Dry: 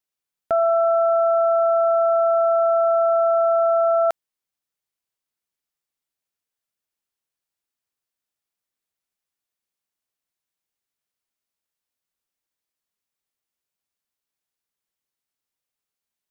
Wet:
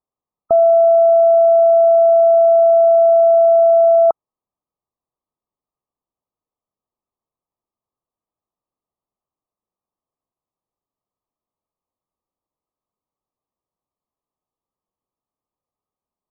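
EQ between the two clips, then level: brick-wall FIR low-pass 1.3 kHz; dynamic bell 900 Hz, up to +3 dB, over -31 dBFS, Q 1.9; +6.5 dB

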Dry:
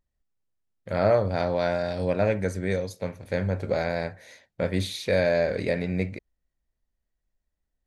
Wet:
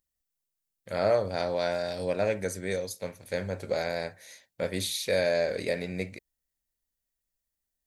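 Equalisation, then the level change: pre-emphasis filter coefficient 0.8; dynamic bell 490 Hz, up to +4 dB, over -46 dBFS, Q 0.99; bass shelf 110 Hz -6 dB; +7.0 dB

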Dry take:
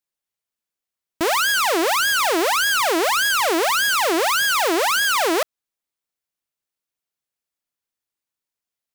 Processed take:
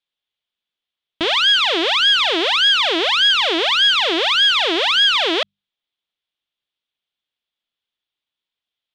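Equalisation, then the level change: hum notches 50/100/150/200 Hz; dynamic bell 1 kHz, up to -4 dB, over -32 dBFS, Q 0.83; resonant low-pass 3.4 kHz, resonance Q 5.2; 0.0 dB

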